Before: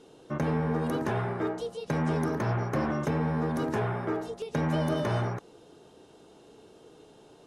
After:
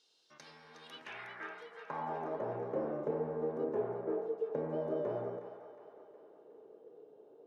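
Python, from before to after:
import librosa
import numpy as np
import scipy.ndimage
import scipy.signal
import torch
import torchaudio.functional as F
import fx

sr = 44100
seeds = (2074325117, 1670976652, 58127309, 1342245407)

y = fx.vibrato(x, sr, rate_hz=6.9, depth_cents=9.6)
y = fx.filter_sweep_bandpass(y, sr, from_hz=4600.0, to_hz=470.0, start_s=0.63, end_s=2.56, q=3.1)
y = fx.echo_split(y, sr, split_hz=640.0, low_ms=99, high_ms=363, feedback_pct=52, wet_db=-9)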